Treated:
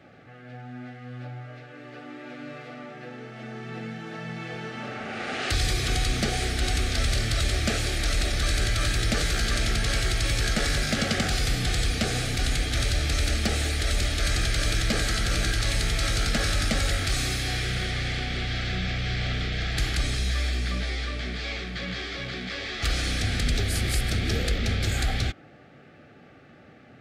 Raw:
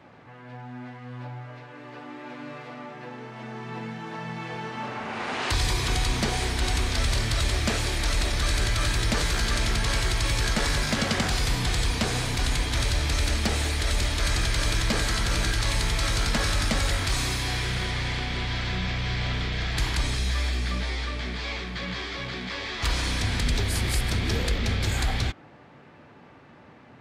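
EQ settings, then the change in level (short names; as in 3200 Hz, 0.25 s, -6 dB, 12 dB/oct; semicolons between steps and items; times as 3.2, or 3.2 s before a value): Butterworth band-stop 980 Hz, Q 2.8; 0.0 dB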